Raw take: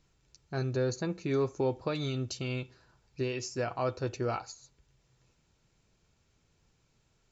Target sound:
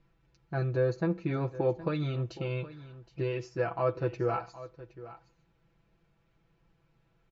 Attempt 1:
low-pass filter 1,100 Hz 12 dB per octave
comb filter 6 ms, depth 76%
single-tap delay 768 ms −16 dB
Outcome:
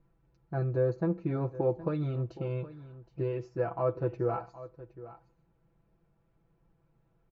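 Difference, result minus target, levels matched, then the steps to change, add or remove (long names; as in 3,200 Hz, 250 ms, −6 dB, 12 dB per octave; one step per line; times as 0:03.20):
2,000 Hz band −7.0 dB
change: low-pass filter 2,300 Hz 12 dB per octave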